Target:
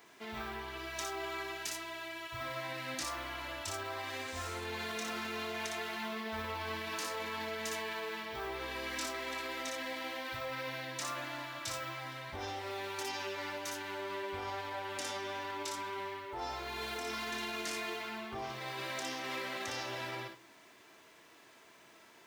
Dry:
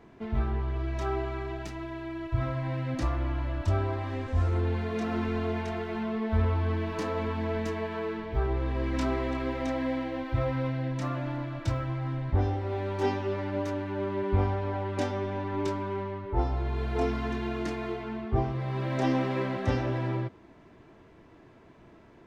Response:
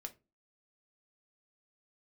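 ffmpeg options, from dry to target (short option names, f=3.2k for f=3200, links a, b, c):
-filter_complex "[0:a]highpass=f=1.2k:p=1,alimiter=level_in=10.5dB:limit=-24dB:level=0:latency=1:release=22,volume=-10.5dB,crystalizer=i=4:c=0,asplit=2[a][b];[1:a]atrim=start_sample=2205,highshelf=f=6k:g=10,adelay=59[c];[b][c]afir=irnorm=-1:irlink=0,volume=-3.5dB[d];[a][d]amix=inputs=2:normalize=0"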